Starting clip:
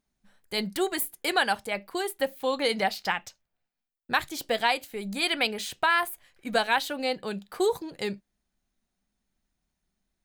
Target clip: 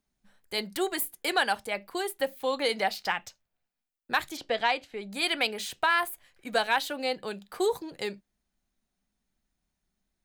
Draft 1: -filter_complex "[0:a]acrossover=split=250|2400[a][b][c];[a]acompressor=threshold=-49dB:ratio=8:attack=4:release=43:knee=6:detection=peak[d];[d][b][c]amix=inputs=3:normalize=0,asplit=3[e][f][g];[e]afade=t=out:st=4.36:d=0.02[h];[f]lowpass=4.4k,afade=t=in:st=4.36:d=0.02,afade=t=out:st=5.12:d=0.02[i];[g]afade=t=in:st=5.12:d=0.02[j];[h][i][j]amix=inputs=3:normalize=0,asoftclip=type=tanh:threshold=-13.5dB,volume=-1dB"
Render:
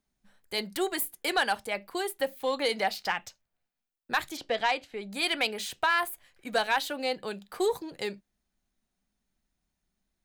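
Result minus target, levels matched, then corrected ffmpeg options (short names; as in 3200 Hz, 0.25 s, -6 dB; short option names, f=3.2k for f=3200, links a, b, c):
soft clip: distortion +11 dB
-filter_complex "[0:a]acrossover=split=250|2400[a][b][c];[a]acompressor=threshold=-49dB:ratio=8:attack=4:release=43:knee=6:detection=peak[d];[d][b][c]amix=inputs=3:normalize=0,asplit=3[e][f][g];[e]afade=t=out:st=4.36:d=0.02[h];[f]lowpass=4.4k,afade=t=in:st=4.36:d=0.02,afade=t=out:st=5.12:d=0.02[i];[g]afade=t=in:st=5.12:d=0.02[j];[h][i][j]amix=inputs=3:normalize=0,asoftclip=type=tanh:threshold=-7dB,volume=-1dB"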